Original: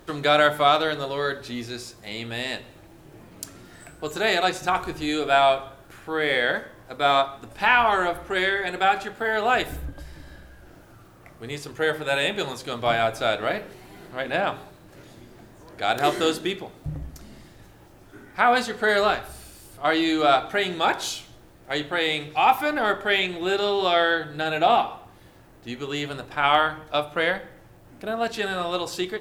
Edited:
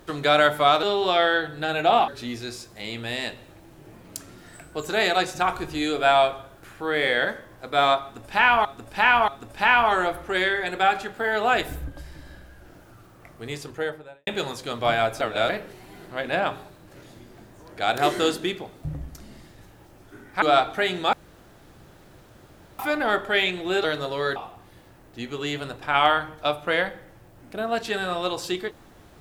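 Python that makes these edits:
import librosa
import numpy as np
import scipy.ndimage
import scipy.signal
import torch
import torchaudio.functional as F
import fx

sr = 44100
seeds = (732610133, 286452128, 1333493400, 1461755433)

y = fx.studio_fade_out(x, sr, start_s=11.56, length_s=0.72)
y = fx.edit(y, sr, fx.swap(start_s=0.83, length_s=0.52, other_s=23.6, other_length_s=1.25),
    fx.repeat(start_s=7.29, length_s=0.63, count=3),
    fx.reverse_span(start_s=13.22, length_s=0.28),
    fx.cut(start_s=18.43, length_s=1.75),
    fx.room_tone_fill(start_s=20.89, length_s=1.66), tone=tone)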